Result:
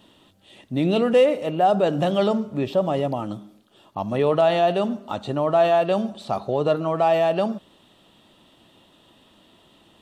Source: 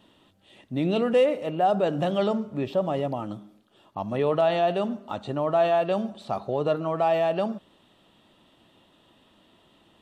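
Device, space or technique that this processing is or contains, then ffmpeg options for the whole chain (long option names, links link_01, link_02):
exciter from parts: -filter_complex "[0:a]asplit=2[link_01][link_02];[link_02]highpass=2700,asoftclip=type=tanh:threshold=-40dB,volume=-6dB[link_03];[link_01][link_03]amix=inputs=2:normalize=0,volume=4dB"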